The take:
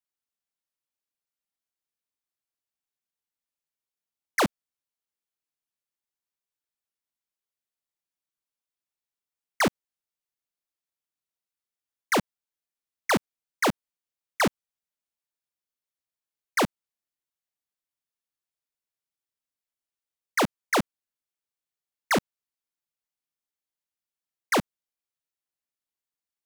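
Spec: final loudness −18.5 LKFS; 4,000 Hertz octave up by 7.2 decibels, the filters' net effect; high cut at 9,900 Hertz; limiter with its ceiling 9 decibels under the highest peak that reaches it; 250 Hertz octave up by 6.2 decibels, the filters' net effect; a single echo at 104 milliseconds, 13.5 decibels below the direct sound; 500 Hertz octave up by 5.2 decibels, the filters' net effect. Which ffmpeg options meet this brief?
ffmpeg -i in.wav -af "lowpass=9900,equalizer=frequency=250:width_type=o:gain=6.5,equalizer=frequency=500:width_type=o:gain=4.5,equalizer=frequency=4000:width_type=o:gain=9,alimiter=limit=-19.5dB:level=0:latency=1,aecho=1:1:104:0.211,volume=11dB" out.wav

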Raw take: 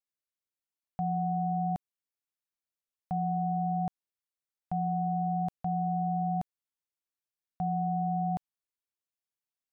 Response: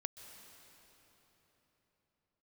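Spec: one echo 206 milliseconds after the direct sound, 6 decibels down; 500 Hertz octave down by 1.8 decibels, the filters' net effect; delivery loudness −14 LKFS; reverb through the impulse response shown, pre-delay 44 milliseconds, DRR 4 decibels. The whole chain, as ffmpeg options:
-filter_complex "[0:a]equalizer=frequency=500:width_type=o:gain=-4,aecho=1:1:206:0.501,asplit=2[link_01][link_02];[1:a]atrim=start_sample=2205,adelay=44[link_03];[link_02][link_03]afir=irnorm=-1:irlink=0,volume=-1.5dB[link_04];[link_01][link_04]amix=inputs=2:normalize=0,volume=19.5dB"

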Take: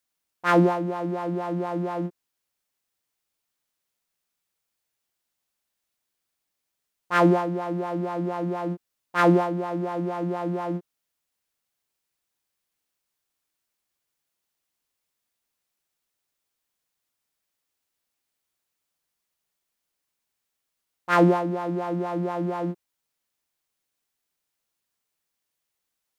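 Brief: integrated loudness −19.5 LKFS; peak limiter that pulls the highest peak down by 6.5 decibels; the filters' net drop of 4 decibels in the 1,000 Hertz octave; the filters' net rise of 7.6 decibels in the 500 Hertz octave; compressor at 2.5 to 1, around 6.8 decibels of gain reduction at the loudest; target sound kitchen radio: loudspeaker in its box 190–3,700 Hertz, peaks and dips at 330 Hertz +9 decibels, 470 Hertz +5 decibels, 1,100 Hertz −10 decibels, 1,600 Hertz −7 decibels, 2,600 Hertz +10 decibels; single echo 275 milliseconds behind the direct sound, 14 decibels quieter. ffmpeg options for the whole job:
ffmpeg -i in.wav -af "equalizer=frequency=500:width_type=o:gain=4.5,equalizer=frequency=1000:width_type=o:gain=-4.5,acompressor=threshold=-22dB:ratio=2.5,alimiter=limit=-19dB:level=0:latency=1,highpass=190,equalizer=frequency=330:width_type=q:width=4:gain=9,equalizer=frequency=470:width_type=q:width=4:gain=5,equalizer=frequency=1100:width_type=q:width=4:gain=-10,equalizer=frequency=1600:width_type=q:width=4:gain=-7,equalizer=frequency=2600:width_type=q:width=4:gain=10,lowpass=frequency=3700:width=0.5412,lowpass=frequency=3700:width=1.3066,aecho=1:1:275:0.2,volume=4dB" out.wav

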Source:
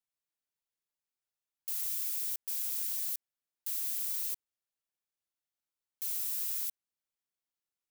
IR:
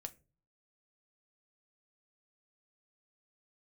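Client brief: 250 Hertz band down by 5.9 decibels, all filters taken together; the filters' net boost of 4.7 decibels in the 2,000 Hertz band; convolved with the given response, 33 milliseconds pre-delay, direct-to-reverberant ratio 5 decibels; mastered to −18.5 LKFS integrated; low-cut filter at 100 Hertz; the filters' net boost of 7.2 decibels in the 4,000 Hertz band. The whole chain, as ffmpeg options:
-filter_complex "[0:a]highpass=100,equalizer=frequency=250:width_type=o:gain=-8.5,equalizer=frequency=2000:width_type=o:gain=3,equalizer=frequency=4000:width_type=o:gain=8.5,asplit=2[link_01][link_02];[1:a]atrim=start_sample=2205,adelay=33[link_03];[link_02][link_03]afir=irnorm=-1:irlink=0,volume=-0.5dB[link_04];[link_01][link_04]amix=inputs=2:normalize=0,volume=12.5dB"

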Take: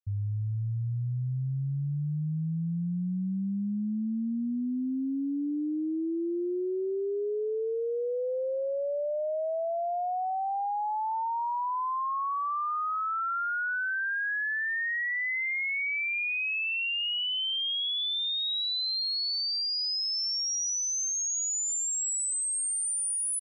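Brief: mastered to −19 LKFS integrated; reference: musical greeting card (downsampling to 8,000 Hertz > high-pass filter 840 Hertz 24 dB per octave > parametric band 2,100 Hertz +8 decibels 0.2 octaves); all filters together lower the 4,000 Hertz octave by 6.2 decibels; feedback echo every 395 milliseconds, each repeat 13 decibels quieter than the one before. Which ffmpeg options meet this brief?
ffmpeg -i in.wav -af "equalizer=frequency=4000:width_type=o:gain=-8.5,aecho=1:1:395|790|1185:0.224|0.0493|0.0108,aresample=8000,aresample=44100,highpass=frequency=840:width=0.5412,highpass=frequency=840:width=1.3066,equalizer=frequency=2100:width_type=o:width=0.2:gain=8,volume=10.5dB" out.wav

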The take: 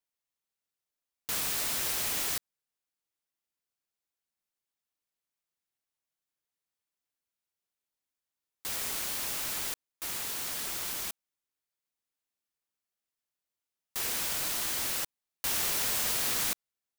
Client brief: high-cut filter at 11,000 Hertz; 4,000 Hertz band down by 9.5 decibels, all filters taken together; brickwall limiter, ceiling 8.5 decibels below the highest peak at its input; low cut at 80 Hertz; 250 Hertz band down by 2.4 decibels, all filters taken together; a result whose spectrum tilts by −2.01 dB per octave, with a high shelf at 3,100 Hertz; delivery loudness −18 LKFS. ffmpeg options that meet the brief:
ffmpeg -i in.wav -af "highpass=80,lowpass=11000,equalizer=frequency=250:width_type=o:gain=-3,highshelf=frequency=3100:gain=-8,equalizer=frequency=4000:width_type=o:gain=-6,volume=26.5dB,alimiter=limit=-9dB:level=0:latency=1" out.wav

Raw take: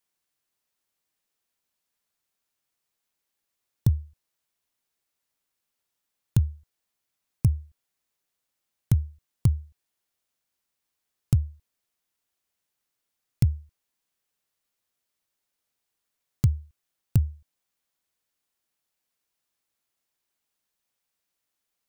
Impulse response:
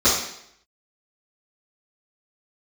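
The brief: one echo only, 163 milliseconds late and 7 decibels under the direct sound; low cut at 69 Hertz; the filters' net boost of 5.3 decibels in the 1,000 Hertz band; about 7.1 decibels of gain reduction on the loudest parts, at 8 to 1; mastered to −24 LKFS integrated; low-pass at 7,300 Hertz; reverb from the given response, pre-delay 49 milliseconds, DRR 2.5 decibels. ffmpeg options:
-filter_complex "[0:a]highpass=69,lowpass=7300,equalizer=frequency=1000:width_type=o:gain=6.5,acompressor=threshold=-23dB:ratio=8,aecho=1:1:163:0.447,asplit=2[link_01][link_02];[1:a]atrim=start_sample=2205,adelay=49[link_03];[link_02][link_03]afir=irnorm=-1:irlink=0,volume=-22dB[link_04];[link_01][link_04]amix=inputs=2:normalize=0,volume=8.5dB"

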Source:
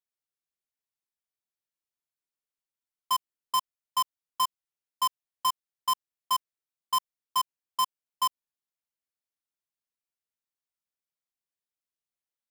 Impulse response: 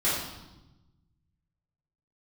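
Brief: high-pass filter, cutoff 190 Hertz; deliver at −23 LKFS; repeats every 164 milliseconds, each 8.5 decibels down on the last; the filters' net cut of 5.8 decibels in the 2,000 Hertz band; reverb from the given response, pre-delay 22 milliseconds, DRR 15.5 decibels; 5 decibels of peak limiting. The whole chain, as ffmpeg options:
-filter_complex "[0:a]highpass=190,equalizer=frequency=2000:width_type=o:gain=-7,alimiter=level_in=2.5dB:limit=-24dB:level=0:latency=1,volume=-2.5dB,aecho=1:1:164|328|492|656:0.376|0.143|0.0543|0.0206,asplit=2[link_01][link_02];[1:a]atrim=start_sample=2205,adelay=22[link_03];[link_02][link_03]afir=irnorm=-1:irlink=0,volume=-27dB[link_04];[link_01][link_04]amix=inputs=2:normalize=0,volume=14dB"

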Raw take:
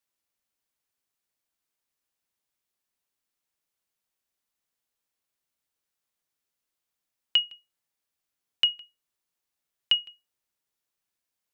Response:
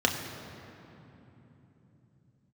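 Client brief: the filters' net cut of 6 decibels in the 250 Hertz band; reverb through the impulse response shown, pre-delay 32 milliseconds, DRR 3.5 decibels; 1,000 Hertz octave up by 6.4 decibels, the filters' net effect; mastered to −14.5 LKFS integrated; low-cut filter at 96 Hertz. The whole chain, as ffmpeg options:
-filter_complex "[0:a]highpass=96,equalizer=frequency=250:width_type=o:gain=-9,equalizer=frequency=1000:width_type=o:gain=8.5,asplit=2[link_01][link_02];[1:a]atrim=start_sample=2205,adelay=32[link_03];[link_02][link_03]afir=irnorm=-1:irlink=0,volume=-16dB[link_04];[link_01][link_04]amix=inputs=2:normalize=0,volume=8.5dB"

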